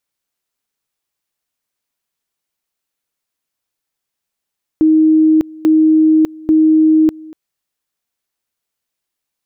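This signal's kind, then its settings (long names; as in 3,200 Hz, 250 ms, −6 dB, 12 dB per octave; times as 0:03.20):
tone at two levels in turn 314 Hz −6.5 dBFS, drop 23.5 dB, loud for 0.60 s, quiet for 0.24 s, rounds 3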